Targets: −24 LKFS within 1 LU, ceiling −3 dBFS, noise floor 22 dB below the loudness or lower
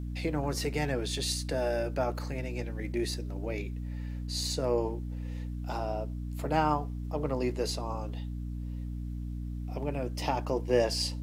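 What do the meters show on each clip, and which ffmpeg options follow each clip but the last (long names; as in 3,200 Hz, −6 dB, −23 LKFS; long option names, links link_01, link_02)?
mains hum 60 Hz; hum harmonics up to 300 Hz; level of the hum −34 dBFS; integrated loudness −33.0 LKFS; sample peak −11.5 dBFS; target loudness −24.0 LKFS
→ -af "bandreject=frequency=60:width_type=h:width=6,bandreject=frequency=120:width_type=h:width=6,bandreject=frequency=180:width_type=h:width=6,bandreject=frequency=240:width_type=h:width=6,bandreject=frequency=300:width_type=h:width=6"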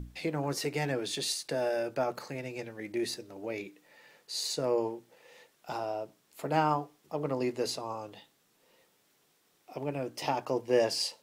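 mains hum none found; integrated loudness −33.0 LKFS; sample peak −12.5 dBFS; target loudness −24.0 LKFS
→ -af "volume=9dB"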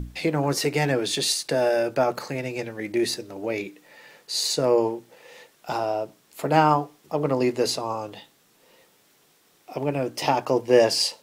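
integrated loudness −24.0 LKFS; sample peak −3.5 dBFS; background noise floor −61 dBFS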